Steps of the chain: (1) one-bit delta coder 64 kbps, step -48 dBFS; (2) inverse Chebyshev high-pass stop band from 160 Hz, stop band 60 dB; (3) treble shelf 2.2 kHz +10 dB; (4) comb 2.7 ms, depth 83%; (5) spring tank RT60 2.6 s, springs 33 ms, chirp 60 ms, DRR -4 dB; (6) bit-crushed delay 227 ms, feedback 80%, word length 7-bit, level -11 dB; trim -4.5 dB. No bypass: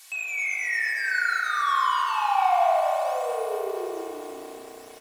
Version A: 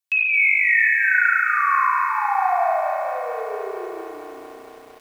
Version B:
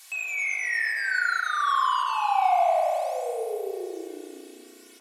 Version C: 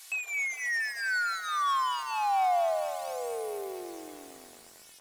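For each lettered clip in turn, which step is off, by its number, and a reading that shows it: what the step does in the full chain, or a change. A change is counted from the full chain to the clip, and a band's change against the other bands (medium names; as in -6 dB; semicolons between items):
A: 1, loudness change +6.5 LU; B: 6, momentary loudness spread change -1 LU; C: 5, 8 kHz band +5.5 dB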